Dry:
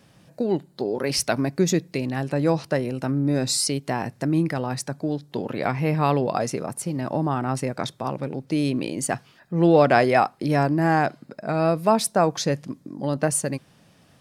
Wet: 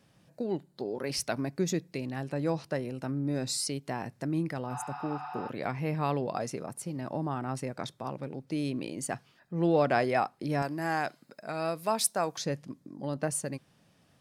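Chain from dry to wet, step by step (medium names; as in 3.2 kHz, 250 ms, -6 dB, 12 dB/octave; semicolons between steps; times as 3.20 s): 4.73–5.46 s: spectral replace 710–6000 Hz before; 10.62–12.38 s: tilt EQ +2.5 dB/octave; trim -9 dB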